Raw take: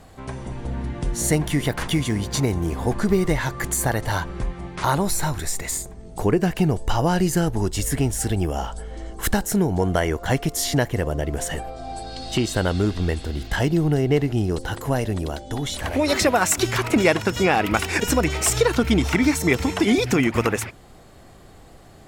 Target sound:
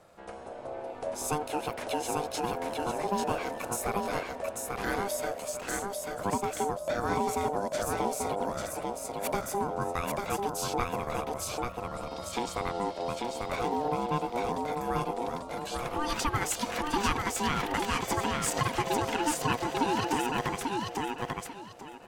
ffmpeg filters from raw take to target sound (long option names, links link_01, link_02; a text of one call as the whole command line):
ffmpeg -i in.wav -af "aecho=1:1:842|1684|2526:0.708|0.17|0.0408,aeval=exprs='val(0)*sin(2*PI*600*n/s)':channel_layout=same,volume=-8.5dB" out.wav